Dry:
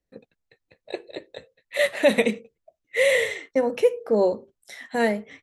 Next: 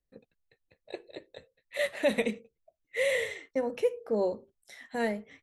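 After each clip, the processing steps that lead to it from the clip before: bass shelf 70 Hz +10.5 dB; trim -8.5 dB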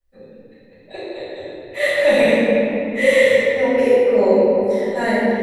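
reverberation RT60 3.3 s, pre-delay 4 ms, DRR -18.5 dB; trim -6 dB

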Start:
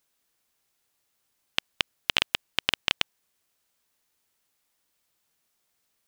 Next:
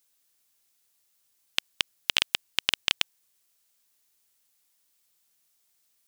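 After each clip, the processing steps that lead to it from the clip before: treble shelf 3.1 kHz +11 dB; trim -5 dB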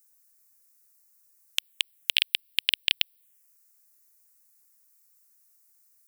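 tilt EQ +2.5 dB/octave; touch-sensitive phaser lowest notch 540 Hz, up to 1.2 kHz, full sweep at -31.5 dBFS; trim -2 dB

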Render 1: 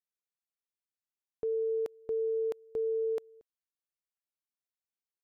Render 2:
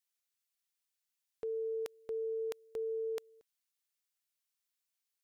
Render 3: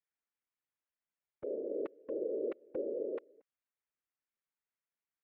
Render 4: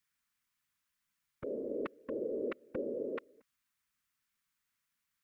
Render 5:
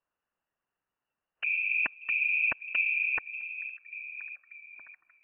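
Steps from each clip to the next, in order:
tilt shelf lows -8.5 dB, about 1.1 kHz
low-pass 2.2 kHz 24 dB/octave; gain riding; whisper effect; trim +1 dB
high-order bell 510 Hz -12 dB; trim +11 dB
repeats whose band climbs or falls 587 ms, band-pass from 270 Hz, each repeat 0.7 oct, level -9.5 dB; spectral noise reduction 9 dB; frequency inversion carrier 2.9 kHz; trim +9 dB

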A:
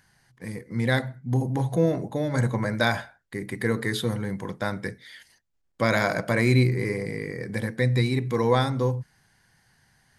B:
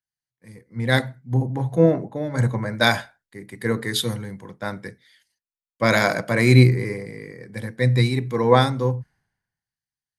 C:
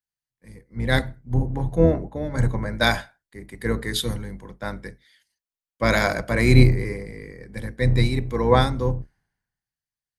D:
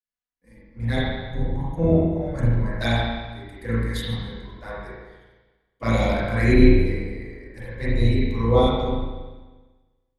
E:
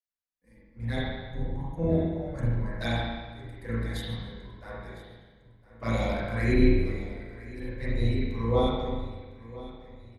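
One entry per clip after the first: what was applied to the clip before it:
three bands expanded up and down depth 100%; trim +2 dB
octave divider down 2 oct, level -2 dB; trim -2 dB
touch-sensitive flanger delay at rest 4.1 ms, full sweep at -15.5 dBFS; spring tank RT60 1.3 s, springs 35/43 ms, chirp 40 ms, DRR -8 dB; trim -7 dB
feedback delay 1007 ms, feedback 49%, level -18 dB; trim -7 dB

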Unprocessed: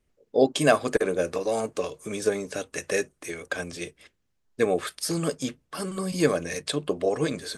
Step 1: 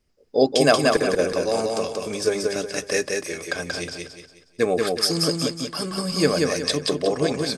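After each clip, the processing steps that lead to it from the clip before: peaking EQ 5 kHz +13 dB 0.28 oct; on a send: feedback delay 182 ms, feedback 36%, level -3 dB; on the sum: trim +2 dB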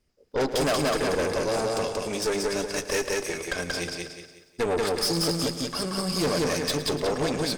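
valve stage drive 24 dB, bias 0.65; bit-crushed delay 111 ms, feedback 55%, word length 10-bit, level -14 dB; trim +2.5 dB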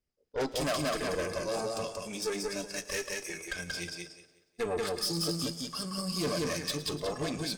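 spectral noise reduction 9 dB; de-hum 330.9 Hz, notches 30; trim -5.5 dB

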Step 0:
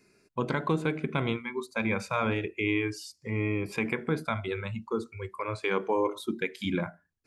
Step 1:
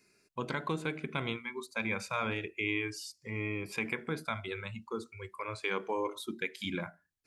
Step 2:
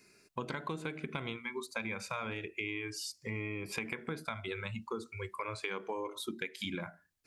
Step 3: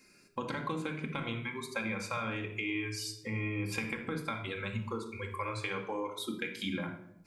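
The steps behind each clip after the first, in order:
tilt shelf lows -4 dB, about 1.4 kHz; trim -4 dB
compression, threshold -40 dBFS, peak gain reduction 11.5 dB; trim +5 dB
reverberation RT60 0.80 s, pre-delay 4 ms, DRR 2.5 dB

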